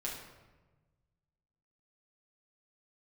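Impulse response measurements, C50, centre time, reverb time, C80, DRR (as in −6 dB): 3.0 dB, 51 ms, 1.2 s, 6.0 dB, −5.0 dB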